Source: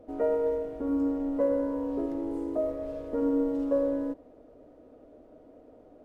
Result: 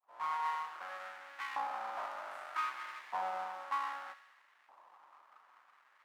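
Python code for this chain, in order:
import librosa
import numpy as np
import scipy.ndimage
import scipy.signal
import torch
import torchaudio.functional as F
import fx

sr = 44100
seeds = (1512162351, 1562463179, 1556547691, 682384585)

p1 = fx.fade_in_head(x, sr, length_s=0.82)
p2 = fx.rider(p1, sr, range_db=5, speed_s=0.5)
p3 = np.abs(p2)
p4 = p3 + fx.echo_wet_highpass(p3, sr, ms=70, feedback_pct=71, hz=1700.0, wet_db=-11, dry=0)
p5 = fx.filter_lfo_highpass(p4, sr, shape='saw_up', hz=0.64, low_hz=870.0, high_hz=1900.0, q=2.0)
y = p5 * 10.0 ** (-4.0 / 20.0)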